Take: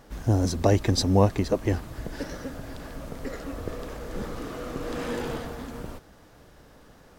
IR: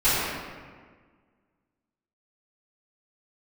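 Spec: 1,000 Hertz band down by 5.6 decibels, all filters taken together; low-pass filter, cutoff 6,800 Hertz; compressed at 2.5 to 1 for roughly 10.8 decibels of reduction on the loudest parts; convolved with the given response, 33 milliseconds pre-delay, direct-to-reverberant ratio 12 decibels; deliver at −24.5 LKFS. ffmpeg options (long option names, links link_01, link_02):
-filter_complex "[0:a]lowpass=6800,equalizer=frequency=1000:width_type=o:gain=-8,acompressor=threshold=-32dB:ratio=2.5,asplit=2[link_01][link_02];[1:a]atrim=start_sample=2205,adelay=33[link_03];[link_02][link_03]afir=irnorm=-1:irlink=0,volume=-30dB[link_04];[link_01][link_04]amix=inputs=2:normalize=0,volume=11.5dB"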